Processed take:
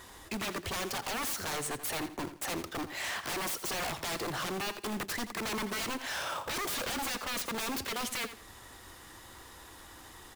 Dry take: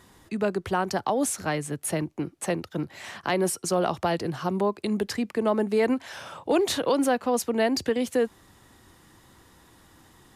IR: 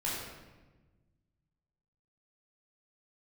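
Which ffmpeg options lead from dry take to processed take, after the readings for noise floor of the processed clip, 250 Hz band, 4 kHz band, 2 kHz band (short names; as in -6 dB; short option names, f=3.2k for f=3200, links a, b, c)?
-52 dBFS, -13.0 dB, -0.5 dB, -1.5 dB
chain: -filter_complex "[0:a]equalizer=f=170:t=o:w=1.8:g=-11.5,asplit=2[a][b];[b]acompressor=threshold=-36dB:ratio=4,volume=1dB[c];[a][c]amix=inputs=2:normalize=0,acrusher=bits=3:mode=log:mix=0:aa=0.000001,acontrast=50,aeval=exprs='0.0668*(abs(mod(val(0)/0.0668+3,4)-2)-1)':c=same,asplit=2[d][e];[e]aecho=0:1:84|168|252:0.251|0.0653|0.017[f];[d][f]amix=inputs=2:normalize=0,volume=-6.5dB"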